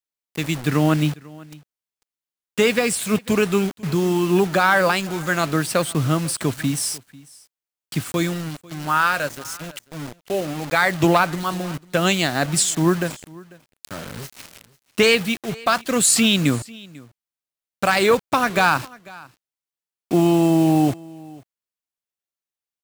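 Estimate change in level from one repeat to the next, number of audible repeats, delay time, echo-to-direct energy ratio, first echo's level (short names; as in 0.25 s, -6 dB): no steady repeat, 1, 0.495 s, -22.5 dB, -22.5 dB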